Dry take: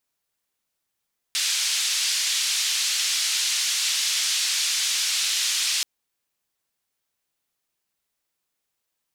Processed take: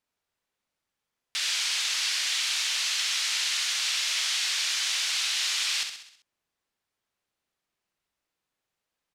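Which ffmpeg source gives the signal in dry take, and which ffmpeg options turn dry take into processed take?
-f lavfi -i "anoisesrc=c=white:d=4.48:r=44100:seed=1,highpass=f=3100,lowpass=f=5800,volume=-10.5dB"
-filter_complex "[0:a]aemphasis=mode=reproduction:type=50kf,asplit=2[s0][s1];[s1]aecho=0:1:65|130|195|260|325|390:0.447|0.237|0.125|0.0665|0.0352|0.0187[s2];[s0][s2]amix=inputs=2:normalize=0"

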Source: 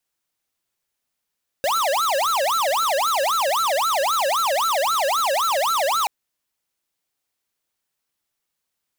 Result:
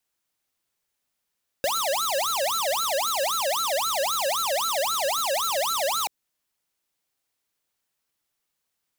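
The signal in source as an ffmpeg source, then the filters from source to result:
-f lavfi -i "aevalsrc='0.0944*(2*lt(mod((943*t-407/(2*PI*3.8)*sin(2*PI*3.8*t)),1),0.5)-1)':d=4.43:s=44100"
-filter_complex "[0:a]acrossover=split=480|3000[s0][s1][s2];[s1]acompressor=threshold=0.0355:ratio=6[s3];[s0][s3][s2]amix=inputs=3:normalize=0"

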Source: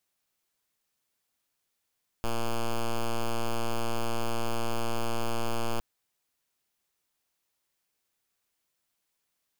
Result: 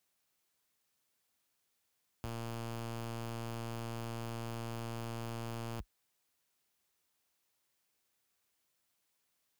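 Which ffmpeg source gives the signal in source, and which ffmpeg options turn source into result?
-f lavfi -i "aevalsrc='0.0447*(2*lt(mod(116*t,1),0.06)-1)':d=3.56:s=44100"
-af "highpass=f=44:w=0.5412,highpass=f=44:w=1.3066,volume=63.1,asoftclip=hard,volume=0.0158"

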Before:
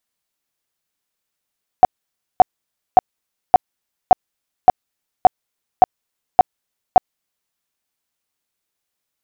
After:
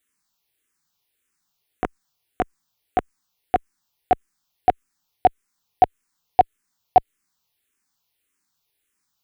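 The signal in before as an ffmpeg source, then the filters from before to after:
-f lavfi -i "aevalsrc='0.794*sin(2*PI*739*mod(t,0.57))*lt(mod(t,0.57),14/739)':d=5.7:s=44100"
-filter_complex "[0:a]equalizer=f=610:t=o:w=0.49:g=-9,asplit=2[s0][s1];[s1]alimiter=limit=0.211:level=0:latency=1:release=115,volume=1.33[s2];[s0][s2]amix=inputs=2:normalize=0,asplit=2[s3][s4];[s4]afreqshift=-1.7[s5];[s3][s5]amix=inputs=2:normalize=1"

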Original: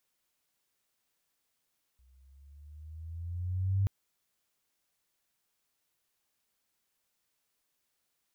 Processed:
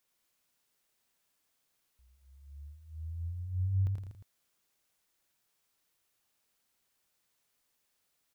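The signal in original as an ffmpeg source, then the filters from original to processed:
-f lavfi -i "aevalsrc='pow(10,(-23.5+37.5*(t/1.88-1))/20)*sin(2*PI*62.6*1.88/(8*log(2)/12)*(exp(8*log(2)/12*t/1.88)-1))':d=1.88:s=44100"
-filter_complex "[0:a]asplit=2[s0][s1];[s1]aecho=0:1:113:0.282[s2];[s0][s2]amix=inputs=2:normalize=0,acompressor=threshold=0.0282:ratio=6,asplit=2[s3][s4];[s4]aecho=0:1:84.55|166.2|242:0.562|0.282|0.282[s5];[s3][s5]amix=inputs=2:normalize=0"

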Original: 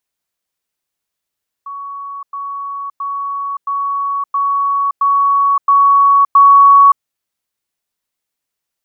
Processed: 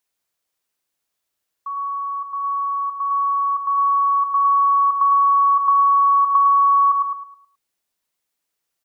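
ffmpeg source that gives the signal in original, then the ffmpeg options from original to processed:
-f lavfi -i "aevalsrc='pow(10,(-24+3*floor(t/0.67))/20)*sin(2*PI*1120*t)*clip(min(mod(t,0.67),0.57-mod(t,0.67))/0.005,0,1)':d=5.36:s=44100"
-filter_complex "[0:a]bass=f=250:g=-4,treble=f=4000:g=1,asplit=2[s0][s1];[s1]adelay=106,lowpass=f=1100:p=1,volume=0.631,asplit=2[s2][s3];[s3]adelay=106,lowpass=f=1100:p=1,volume=0.45,asplit=2[s4][s5];[s5]adelay=106,lowpass=f=1100:p=1,volume=0.45,asplit=2[s6][s7];[s7]adelay=106,lowpass=f=1100:p=1,volume=0.45,asplit=2[s8][s9];[s9]adelay=106,lowpass=f=1100:p=1,volume=0.45,asplit=2[s10][s11];[s11]adelay=106,lowpass=f=1100:p=1,volume=0.45[s12];[s0][s2][s4][s6][s8][s10][s12]amix=inputs=7:normalize=0,acompressor=threshold=0.224:ratio=10"

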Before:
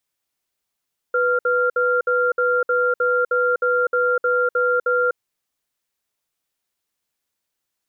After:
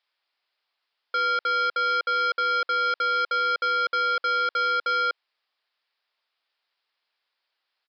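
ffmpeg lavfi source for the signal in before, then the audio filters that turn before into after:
-f lavfi -i "aevalsrc='0.119*(sin(2*PI*494*t)+sin(2*PI*1390*t))*clip(min(mod(t,0.31),0.25-mod(t,0.31))/0.005,0,1)':d=4:s=44100"
-af "highpass=710,acontrast=54,aresample=11025,asoftclip=type=tanh:threshold=0.075,aresample=44100"

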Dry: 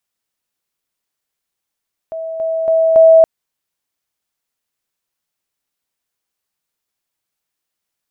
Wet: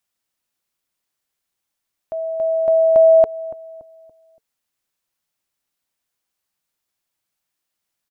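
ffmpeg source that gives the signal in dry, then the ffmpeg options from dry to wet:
-f lavfi -i "aevalsrc='pow(10,(-21.5+6*floor(t/0.28))/20)*sin(2*PI*650*t)':d=1.12:s=44100"
-filter_complex "[0:a]bandreject=f=440:w=12,asplit=2[s0][s1];[s1]adelay=285,lowpass=f=820:p=1,volume=0.119,asplit=2[s2][s3];[s3]adelay=285,lowpass=f=820:p=1,volume=0.46,asplit=2[s4][s5];[s5]adelay=285,lowpass=f=820:p=1,volume=0.46,asplit=2[s6][s7];[s7]adelay=285,lowpass=f=820:p=1,volume=0.46[s8];[s0][s2][s4][s6][s8]amix=inputs=5:normalize=0,acompressor=threshold=0.2:ratio=1.5"

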